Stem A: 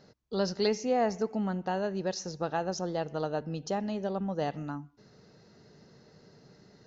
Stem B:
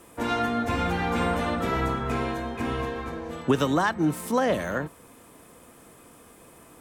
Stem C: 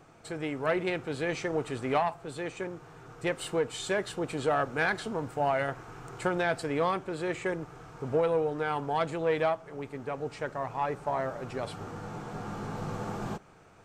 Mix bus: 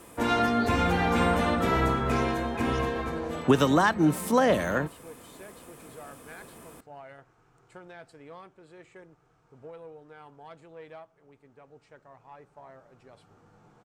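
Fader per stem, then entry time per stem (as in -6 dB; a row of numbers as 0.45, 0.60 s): -11.5, +1.5, -18.5 dB; 0.00, 0.00, 1.50 s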